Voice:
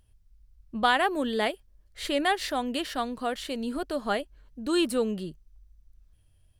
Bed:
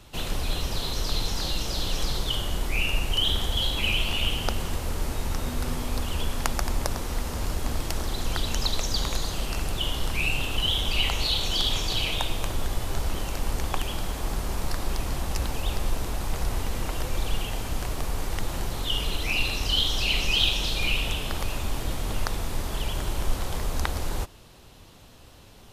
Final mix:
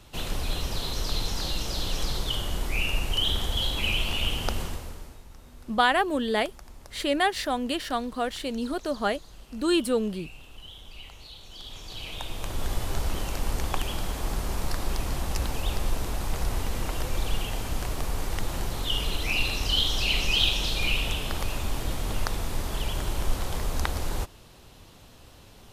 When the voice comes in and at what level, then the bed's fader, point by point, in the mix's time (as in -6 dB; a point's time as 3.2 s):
4.95 s, +1.5 dB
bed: 4.62 s -1.5 dB
5.25 s -20.5 dB
11.45 s -20.5 dB
12.7 s -0.5 dB